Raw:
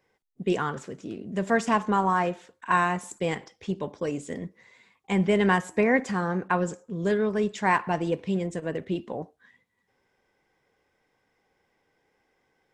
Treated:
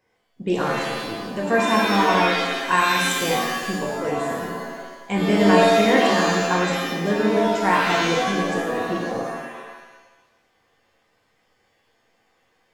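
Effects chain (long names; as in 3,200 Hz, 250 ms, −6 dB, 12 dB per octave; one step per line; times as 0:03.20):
0:02.28–0:03.31: high-shelf EQ 3,400 Hz +11 dB
reverb with rising layers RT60 1.1 s, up +7 semitones, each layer −2 dB, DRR −1 dB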